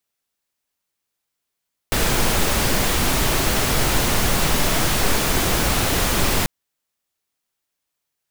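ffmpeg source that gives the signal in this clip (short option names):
-f lavfi -i "anoisesrc=c=pink:a=0.61:d=4.54:r=44100:seed=1"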